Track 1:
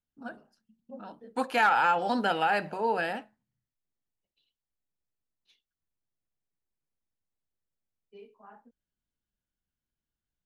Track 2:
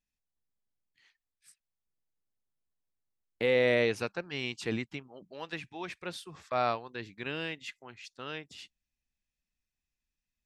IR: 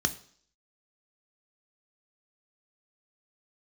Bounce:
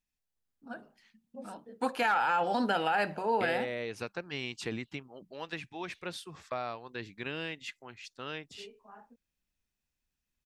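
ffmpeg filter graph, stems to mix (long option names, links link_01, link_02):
-filter_complex "[0:a]dynaudnorm=framelen=170:gausssize=3:maxgain=5.5dB,alimiter=limit=-13.5dB:level=0:latency=1:release=37,adelay=450,volume=-6dB[link_01];[1:a]acompressor=threshold=-32dB:ratio=12,volume=0.5dB[link_02];[link_01][link_02]amix=inputs=2:normalize=0"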